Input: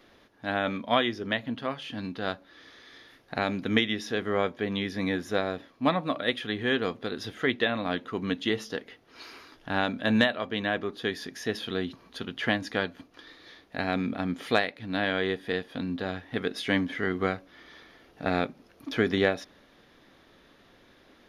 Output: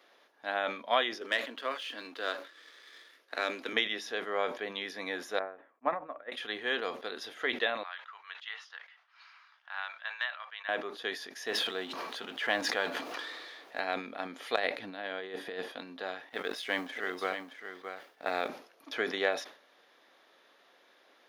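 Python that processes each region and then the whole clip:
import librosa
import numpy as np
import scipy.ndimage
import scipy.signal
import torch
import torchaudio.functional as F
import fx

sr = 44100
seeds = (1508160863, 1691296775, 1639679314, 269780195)

y = fx.chain(x, sr, fx.peak_eq(hz=780.0, db=-11.0, octaves=0.47),
    fx.leveller(passes=1),
    fx.highpass(hz=250.0, slope=24), at=(1.21, 3.73))
y = fx.chain(y, sr, fx.lowpass(hz=1900.0, slope=24),
    fx.upward_expand(threshold_db=-40.0, expansion=2.5), at=(5.39, 6.32))
y = fx.chain(y, sr, fx.highpass(hz=1100.0, slope=24),
    fx.spacing_loss(db_at_10k=25), at=(7.83, 10.69))
y = fx.chain(y, sr, fx.law_mismatch(coded='mu'),
    fx.high_shelf(hz=5900.0, db=-5.0),
    fx.sustainer(db_per_s=27.0), at=(11.47, 13.8))
y = fx.chain(y, sr, fx.low_shelf(hz=430.0, db=9.0),
    fx.over_compress(threshold_db=-28.0, ratio=-0.5), at=(14.56, 15.72))
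y = fx.chain(y, sr, fx.law_mismatch(coded='A'),
    fx.echo_single(ms=621, db=-8.5),
    fx.sustainer(db_per_s=130.0), at=(16.29, 18.48))
y = scipy.signal.sosfilt(scipy.signal.cheby1(2, 1.0, 600.0, 'highpass', fs=sr, output='sos'), y)
y = fx.sustainer(y, sr, db_per_s=120.0)
y = F.gain(torch.from_numpy(y), -2.5).numpy()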